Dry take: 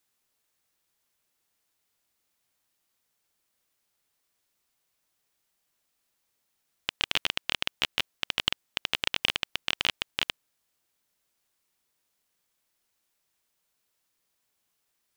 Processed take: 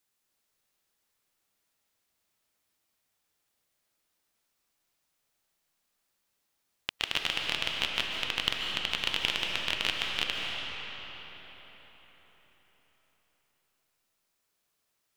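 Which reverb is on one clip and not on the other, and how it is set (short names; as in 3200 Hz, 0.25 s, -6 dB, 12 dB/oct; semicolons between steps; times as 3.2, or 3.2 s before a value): digital reverb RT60 4.8 s, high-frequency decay 0.7×, pre-delay 0.105 s, DRR -0.5 dB; gain -3 dB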